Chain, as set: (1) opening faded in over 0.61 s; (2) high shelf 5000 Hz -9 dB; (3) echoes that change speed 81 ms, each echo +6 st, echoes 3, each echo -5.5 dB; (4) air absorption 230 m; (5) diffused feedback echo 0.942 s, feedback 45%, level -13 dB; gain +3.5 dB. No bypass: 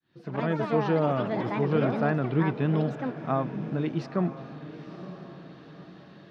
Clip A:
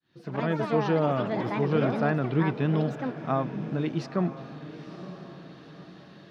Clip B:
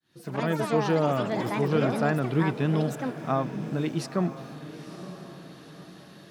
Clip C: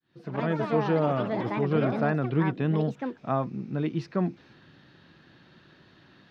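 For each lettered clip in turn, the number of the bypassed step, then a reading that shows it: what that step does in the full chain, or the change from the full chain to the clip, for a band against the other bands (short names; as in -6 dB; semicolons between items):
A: 2, 4 kHz band +2.0 dB; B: 4, 4 kHz band +5.0 dB; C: 5, echo-to-direct -12.0 dB to none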